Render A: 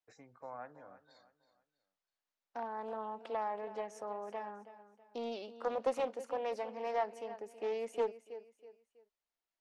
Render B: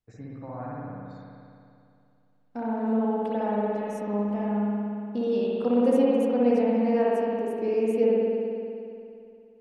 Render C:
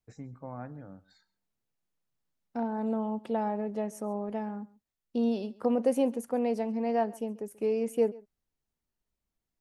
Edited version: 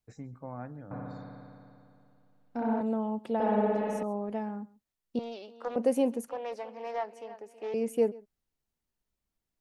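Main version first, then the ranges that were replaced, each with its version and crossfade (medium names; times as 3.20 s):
C
0.91–2.81 s: from B
3.40–4.03 s: from B
5.19–5.76 s: from A
6.28–7.74 s: from A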